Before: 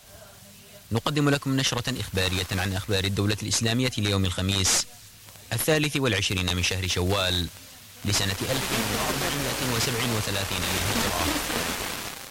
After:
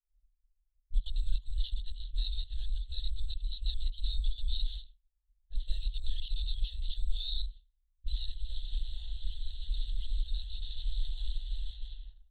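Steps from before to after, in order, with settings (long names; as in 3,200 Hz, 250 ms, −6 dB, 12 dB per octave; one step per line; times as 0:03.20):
linear-prediction vocoder at 8 kHz whisper
downward expander −37 dBFS
inverse Chebyshev band-stop filter 130–2,500 Hz, stop band 60 dB
spectral tilt +2.5 dB per octave
low-pass that shuts in the quiet parts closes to 620 Hz, open at −46 dBFS
level +17 dB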